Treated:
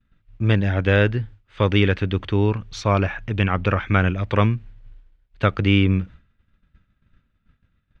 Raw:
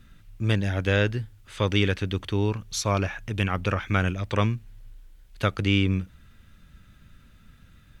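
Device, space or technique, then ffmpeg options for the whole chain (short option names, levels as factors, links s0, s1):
hearing-loss simulation: -af "lowpass=2900,agate=range=0.0224:threshold=0.0112:ratio=3:detection=peak,volume=1.88"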